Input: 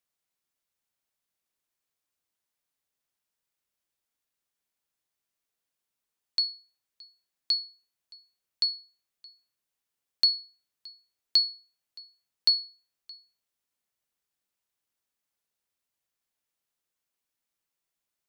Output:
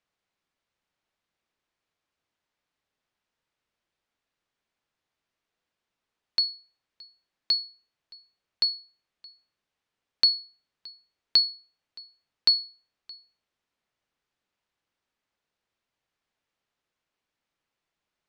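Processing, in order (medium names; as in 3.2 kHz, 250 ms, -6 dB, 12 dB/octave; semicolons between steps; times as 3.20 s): Bessel low-pass 3.2 kHz, order 2; trim +7.5 dB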